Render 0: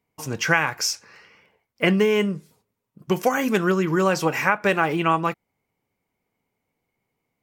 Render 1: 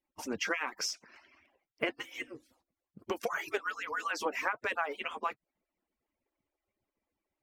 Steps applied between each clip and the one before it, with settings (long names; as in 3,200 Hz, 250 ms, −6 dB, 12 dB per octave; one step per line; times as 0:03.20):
harmonic-percussive split with one part muted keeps percussive
high-shelf EQ 6,600 Hz −11.5 dB
downward compressor 2.5 to 1, threshold −29 dBFS, peak gain reduction 10 dB
level −3 dB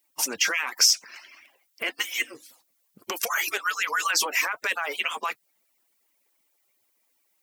brickwall limiter −27 dBFS, peak gain reduction 11.5 dB
spectral tilt +4.5 dB per octave
level +8.5 dB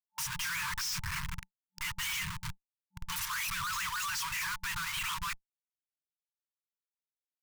tube saturation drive 32 dB, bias 0.4
comparator with hysteresis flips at −45 dBFS
brick-wall band-stop 190–880 Hz
level +4.5 dB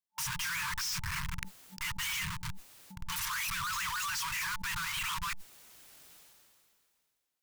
level that may fall only so fast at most 25 dB per second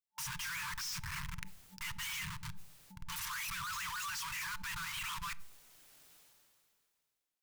convolution reverb RT60 0.70 s, pre-delay 7 ms, DRR 17 dB
level −5.5 dB